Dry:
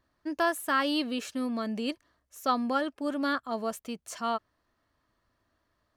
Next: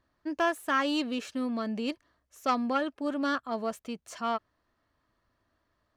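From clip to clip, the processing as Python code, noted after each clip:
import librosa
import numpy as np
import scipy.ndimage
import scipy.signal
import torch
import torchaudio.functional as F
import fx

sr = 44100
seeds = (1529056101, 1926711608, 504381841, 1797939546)

y = fx.self_delay(x, sr, depth_ms=0.071)
y = fx.high_shelf(y, sr, hz=8500.0, db=-10.0)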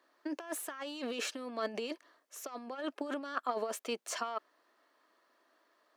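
y = fx.over_compress(x, sr, threshold_db=-34.0, ratio=-0.5)
y = scipy.signal.sosfilt(scipy.signal.butter(4, 330.0, 'highpass', fs=sr, output='sos'), y)
y = F.gain(torch.from_numpy(y), 1.0).numpy()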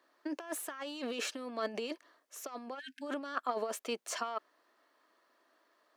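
y = fx.spec_erase(x, sr, start_s=2.79, length_s=0.24, low_hz=260.0, high_hz=1500.0)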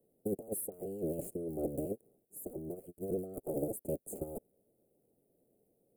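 y = fx.cycle_switch(x, sr, every=3, mode='inverted')
y = scipy.signal.sosfilt(scipy.signal.cheby2(4, 40, [980.0, 5900.0], 'bandstop', fs=sr, output='sos'), y)
y = F.gain(torch.from_numpy(y), 4.5).numpy()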